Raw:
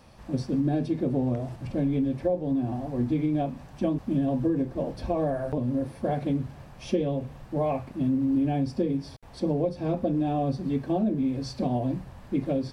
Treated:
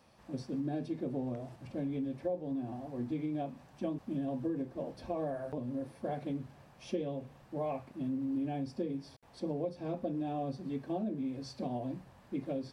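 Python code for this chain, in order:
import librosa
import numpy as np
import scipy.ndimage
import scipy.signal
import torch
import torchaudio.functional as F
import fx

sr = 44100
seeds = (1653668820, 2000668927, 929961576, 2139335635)

y = fx.highpass(x, sr, hz=180.0, slope=6)
y = F.gain(torch.from_numpy(y), -8.5).numpy()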